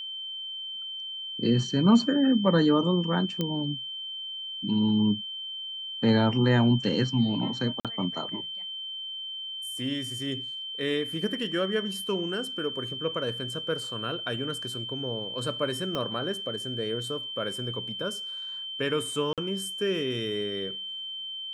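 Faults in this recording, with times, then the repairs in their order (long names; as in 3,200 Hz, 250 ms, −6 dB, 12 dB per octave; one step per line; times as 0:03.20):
whistle 3,100 Hz −34 dBFS
0:03.41: click −15 dBFS
0:07.80–0:07.85: drop-out 47 ms
0:15.95: click −17 dBFS
0:19.33–0:19.38: drop-out 47 ms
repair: click removal
notch filter 3,100 Hz, Q 30
repair the gap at 0:07.80, 47 ms
repair the gap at 0:19.33, 47 ms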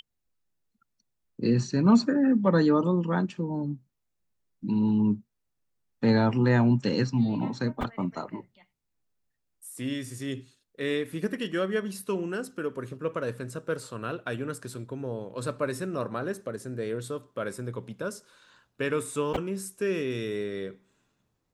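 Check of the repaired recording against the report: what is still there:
0:15.95: click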